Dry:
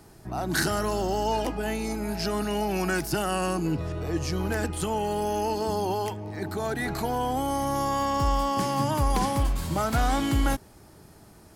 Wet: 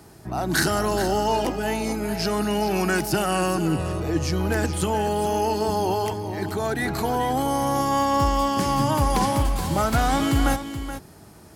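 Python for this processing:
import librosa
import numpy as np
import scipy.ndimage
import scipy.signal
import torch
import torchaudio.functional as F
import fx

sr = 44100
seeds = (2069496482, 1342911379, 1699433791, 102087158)

y = scipy.signal.sosfilt(scipy.signal.butter(2, 51.0, 'highpass', fs=sr, output='sos'), x)
y = y + 10.0 ** (-10.5 / 20.0) * np.pad(y, (int(426 * sr / 1000.0), 0))[:len(y)]
y = y * 10.0 ** (4.0 / 20.0)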